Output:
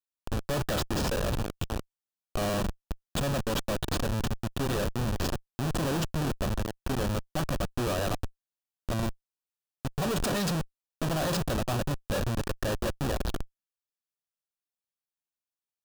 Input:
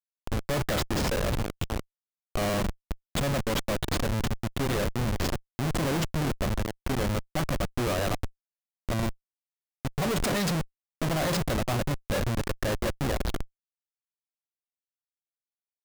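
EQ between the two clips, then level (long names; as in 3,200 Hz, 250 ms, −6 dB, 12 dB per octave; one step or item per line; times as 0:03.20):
notch filter 2,100 Hz, Q 5.2
−1.5 dB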